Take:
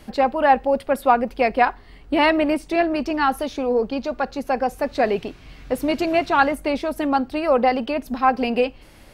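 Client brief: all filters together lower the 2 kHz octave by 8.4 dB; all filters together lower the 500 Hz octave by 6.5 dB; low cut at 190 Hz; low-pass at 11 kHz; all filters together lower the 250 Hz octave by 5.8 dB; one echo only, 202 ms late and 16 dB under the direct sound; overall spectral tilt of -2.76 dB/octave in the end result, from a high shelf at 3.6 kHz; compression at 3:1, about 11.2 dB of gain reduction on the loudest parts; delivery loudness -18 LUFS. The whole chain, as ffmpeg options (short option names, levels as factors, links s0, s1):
-af "highpass=190,lowpass=11000,equalizer=f=250:t=o:g=-3.5,equalizer=f=500:t=o:g=-6.5,equalizer=f=2000:t=o:g=-9,highshelf=f=3600:g=-6,acompressor=threshold=0.0282:ratio=3,aecho=1:1:202:0.158,volume=6.31"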